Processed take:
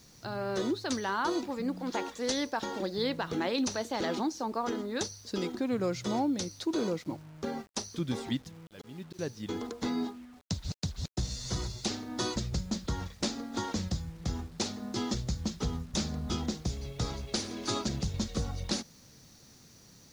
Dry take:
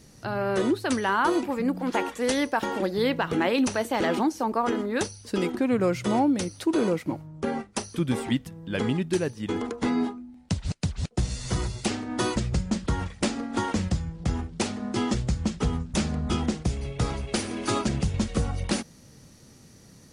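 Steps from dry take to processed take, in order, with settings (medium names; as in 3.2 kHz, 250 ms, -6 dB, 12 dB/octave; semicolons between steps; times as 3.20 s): 8.60–9.19 s: slow attack 484 ms; high-order bell 5 kHz +12 dB 1.2 oct; bit crusher 8-bit; treble shelf 3.3 kHz -7 dB; trim -7 dB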